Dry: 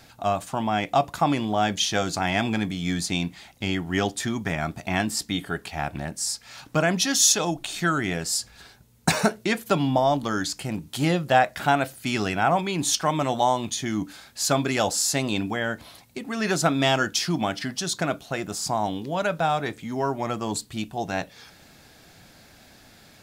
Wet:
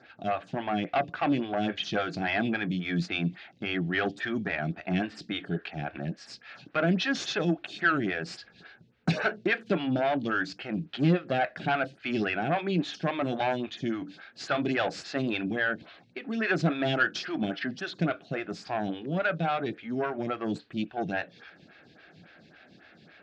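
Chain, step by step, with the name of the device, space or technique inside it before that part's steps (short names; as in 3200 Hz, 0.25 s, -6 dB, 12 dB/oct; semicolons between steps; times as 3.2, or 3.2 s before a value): vibe pedal into a guitar amplifier (photocell phaser 3.6 Hz; tube stage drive 19 dB, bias 0.3; speaker cabinet 100–4200 Hz, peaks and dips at 170 Hz +6 dB, 340 Hz +4 dB, 960 Hz -9 dB, 1600 Hz +7 dB, 2600 Hz +4 dB)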